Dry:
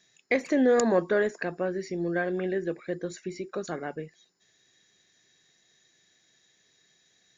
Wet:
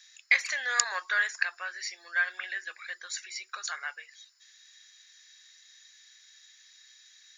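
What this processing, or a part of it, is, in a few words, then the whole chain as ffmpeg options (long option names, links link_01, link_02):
headphones lying on a table: -af "highpass=frequency=1300:width=0.5412,highpass=frequency=1300:width=1.3066,equalizer=frequency=4800:width_type=o:width=0.59:gain=5,volume=7.5dB"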